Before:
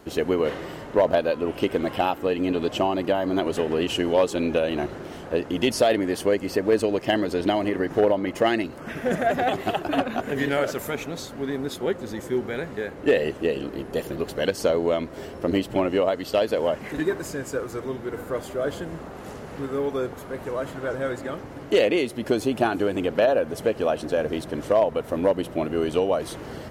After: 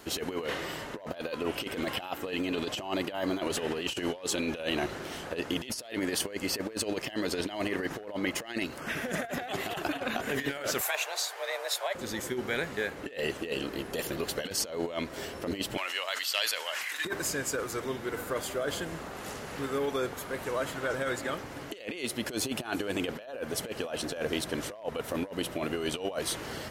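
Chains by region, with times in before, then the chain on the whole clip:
10.81–11.95 s: high-pass 440 Hz + frequency shift +190 Hz
15.77–17.05 s: high-pass 1.5 kHz + decay stretcher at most 42 dB/s
whole clip: tilt shelf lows -6 dB, about 1.2 kHz; compressor with a negative ratio -29 dBFS, ratio -0.5; trim -2.5 dB

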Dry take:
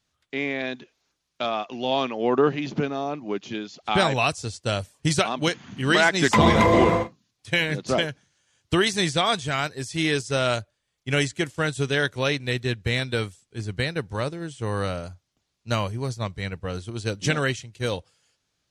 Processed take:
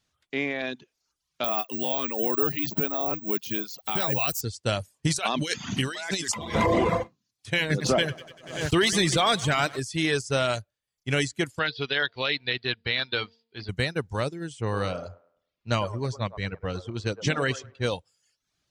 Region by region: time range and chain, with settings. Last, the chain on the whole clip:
1.44–4.41 s: treble shelf 6.1 kHz +8.5 dB + careless resampling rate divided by 2×, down none, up zero stuff
5.16–6.55 s: treble shelf 2.9 kHz +11 dB + compressor with a negative ratio -29 dBFS
7.70–9.80 s: feedback delay 97 ms, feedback 59%, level -13.5 dB + waveshaping leveller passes 1 + swell ahead of each attack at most 92 dB/s
11.59–13.69 s: Chebyshev low-pass 4.8 kHz, order 6 + tilt EQ +3 dB/octave + de-hum 228.7 Hz, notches 4
14.61–17.91 s: low-pass 8 kHz + level-controlled noise filter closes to 2.9 kHz, open at -19.5 dBFS + feedback echo behind a band-pass 105 ms, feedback 34%, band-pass 710 Hz, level -7 dB
whole clip: reverb removal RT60 0.58 s; peak limiter -13.5 dBFS

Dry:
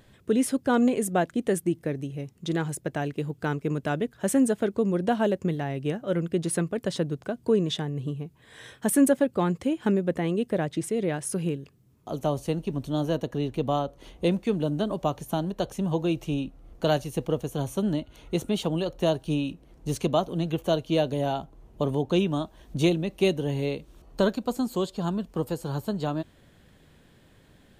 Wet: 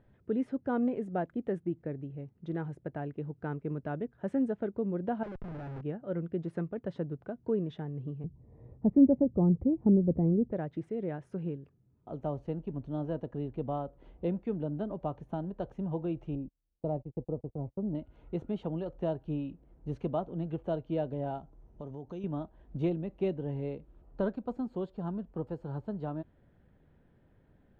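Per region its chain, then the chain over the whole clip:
5.23–5.81 s: compression 2.5:1, threshold -30 dBFS + Schmitt trigger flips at -41.5 dBFS
8.24–10.52 s: boxcar filter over 28 samples + tilt EQ -4 dB/octave
16.35–17.95 s: gate -36 dBFS, range -31 dB + boxcar filter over 28 samples
21.38–22.24 s: compression 2:1, threshold -37 dBFS + resonant low-pass 6.1 kHz, resonance Q 11
whole clip: low-pass 1.4 kHz 12 dB/octave; bass shelf 120 Hz +4 dB; band-stop 1.1 kHz, Q 11; trim -8.5 dB

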